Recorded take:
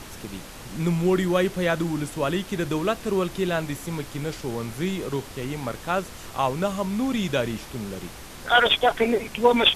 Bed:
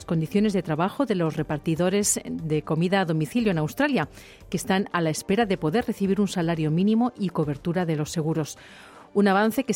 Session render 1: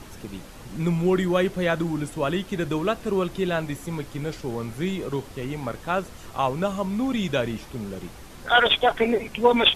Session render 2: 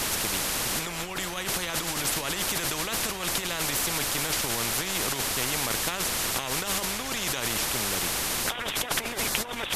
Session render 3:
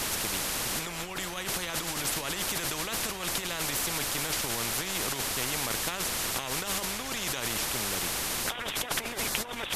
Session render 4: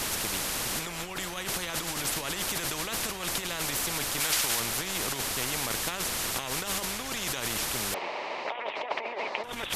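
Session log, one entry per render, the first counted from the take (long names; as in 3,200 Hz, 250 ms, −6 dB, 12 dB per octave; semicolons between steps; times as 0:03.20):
broadband denoise 6 dB, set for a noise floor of −41 dBFS
compressor whose output falls as the input rises −30 dBFS, ratio −1; every bin compressed towards the loudest bin 4 to 1
level −3 dB
0:04.20–0:04.60: tilt shelving filter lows −5 dB, about 640 Hz; 0:07.94–0:09.44: loudspeaker in its box 410–3,500 Hz, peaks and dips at 410 Hz +4 dB, 610 Hz +9 dB, 920 Hz +8 dB, 1,500 Hz −9 dB, 2,200 Hz +3 dB, 3,400 Hz −8 dB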